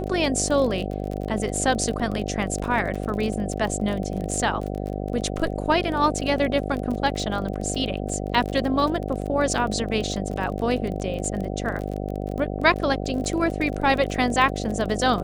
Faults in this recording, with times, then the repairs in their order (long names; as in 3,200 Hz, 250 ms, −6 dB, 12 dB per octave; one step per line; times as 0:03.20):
mains buzz 50 Hz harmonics 15 −29 dBFS
surface crackle 26 per second −28 dBFS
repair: click removal
hum removal 50 Hz, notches 15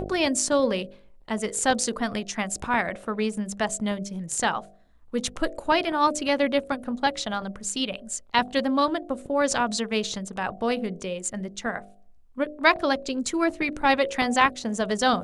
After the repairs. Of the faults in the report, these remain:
none of them is left